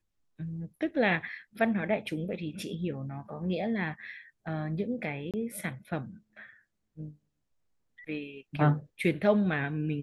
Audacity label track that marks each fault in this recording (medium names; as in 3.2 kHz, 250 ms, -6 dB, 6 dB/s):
5.310000	5.340000	dropout 27 ms